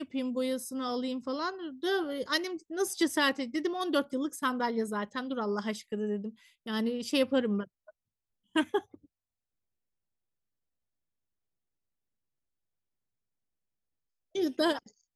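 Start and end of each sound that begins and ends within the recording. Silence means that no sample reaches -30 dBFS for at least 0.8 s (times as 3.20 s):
8.56–8.79 s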